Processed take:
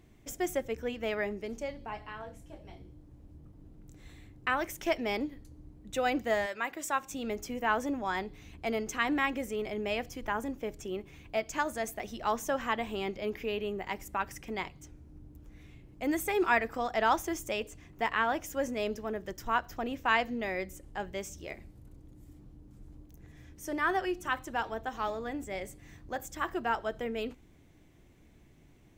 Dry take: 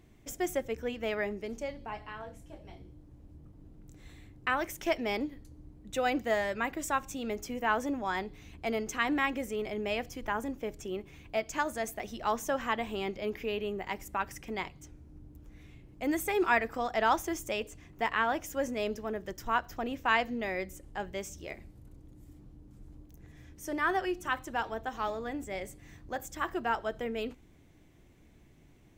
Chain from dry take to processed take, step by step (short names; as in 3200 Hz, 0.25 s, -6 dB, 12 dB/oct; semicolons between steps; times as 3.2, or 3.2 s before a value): 6.45–7.11 HPF 880 Hz -> 260 Hz 6 dB/oct